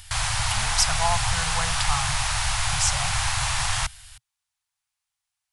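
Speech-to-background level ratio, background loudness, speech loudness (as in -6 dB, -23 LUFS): -3.5 dB, -24.5 LUFS, -28.0 LUFS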